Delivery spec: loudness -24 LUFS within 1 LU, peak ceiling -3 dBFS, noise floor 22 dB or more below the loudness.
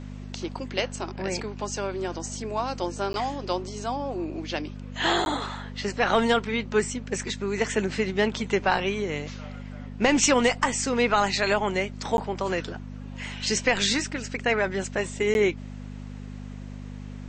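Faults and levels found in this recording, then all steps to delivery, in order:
dropouts 4; longest dropout 11 ms; hum 50 Hz; harmonics up to 250 Hz; hum level -35 dBFS; loudness -26.5 LUFS; peak -8.0 dBFS; loudness target -24.0 LUFS
-> interpolate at 3.13/5.25/12.17/15.34, 11 ms; de-hum 50 Hz, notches 5; gain +2.5 dB

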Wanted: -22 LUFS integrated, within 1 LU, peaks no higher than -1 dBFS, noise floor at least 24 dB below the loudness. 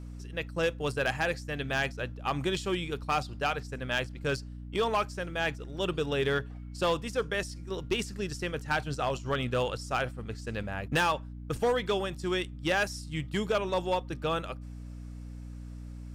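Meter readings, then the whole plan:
clipped 0.6%; flat tops at -21.0 dBFS; hum 60 Hz; harmonics up to 300 Hz; hum level -39 dBFS; loudness -31.5 LUFS; peak -21.0 dBFS; loudness target -22.0 LUFS
-> clip repair -21 dBFS; de-hum 60 Hz, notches 5; gain +9.5 dB

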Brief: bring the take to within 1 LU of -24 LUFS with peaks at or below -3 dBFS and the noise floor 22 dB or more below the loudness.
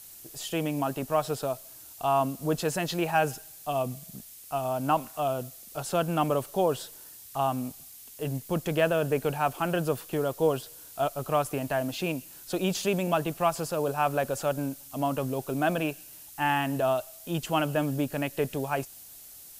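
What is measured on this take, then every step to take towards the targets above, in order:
noise floor -48 dBFS; noise floor target -52 dBFS; loudness -29.5 LUFS; peak -12.0 dBFS; loudness target -24.0 LUFS
-> noise print and reduce 6 dB; gain +5.5 dB

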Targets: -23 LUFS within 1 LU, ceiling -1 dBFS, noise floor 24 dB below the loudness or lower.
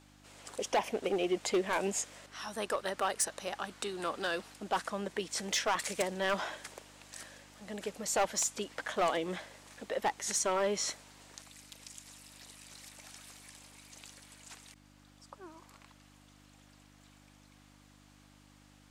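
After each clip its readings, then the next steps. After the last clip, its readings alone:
clipped 0.5%; flat tops at -24.0 dBFS; hum 50 Hz; harmonics up to 300 Hz; hum level -60 dBFS; loudness -34.0 LUFS; peak -24.0 dBFS; loudness target -23.0 LUFS
-> clip repair -24 dBFS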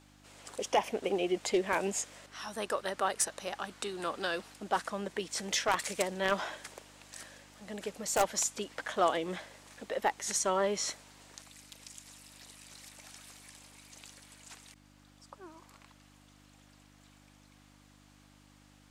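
clipped 0.0%; hum 50 Hz; harmonics up to 300 Hz; hum level -60 dBFS
-> de-hum 50 Hz, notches 6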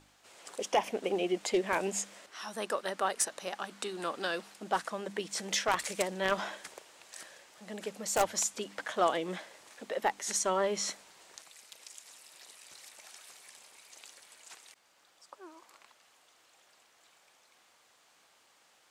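hum none; loudness -33.0 LUFS; peak -15.0 dBFS; loudness target -23.0 LUFS
-> gain +10 dB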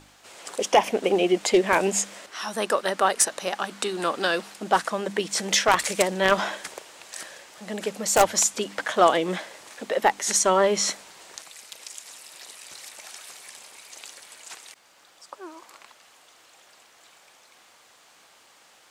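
loudness -23.0 LUFS; peak -5.0 dBFS; noise floor -56 dBFS

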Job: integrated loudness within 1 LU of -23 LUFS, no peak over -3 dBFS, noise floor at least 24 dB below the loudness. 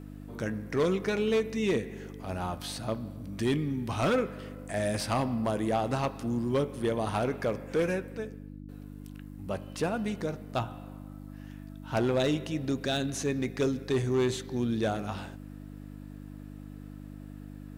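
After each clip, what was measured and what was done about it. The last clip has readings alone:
clipped 0.8%; flat tops at -21.0 dBFS; hum 50 Hz; harmonics up to 300 Hz; hum level -42 dBFS; loudness -31.0 LUFS; peak -21.0 dBFS; loudness target -23.0 LUFS
-> clip repair -21 dBFS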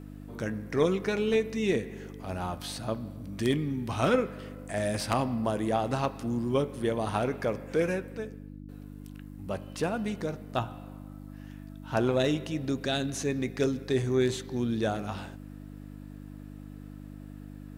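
clipped 0.0%; hum 50 Hz; harmonics up to 300 Hz; hum level -42 dBFS
-> de-hum 50 Hz, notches 6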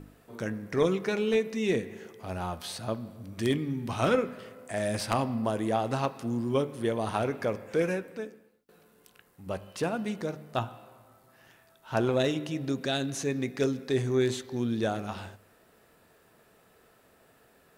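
hum none; loudness -30.5 LUFS; peak -12.5 dBFS; loudness target -23.0 LUFS
-> gain +7.5 dB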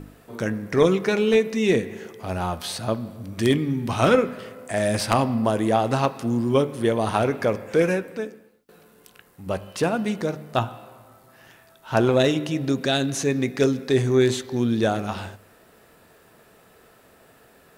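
loudness -23.0 LUFS; peak -5.0 dBFS; noise floor -55 dBFS

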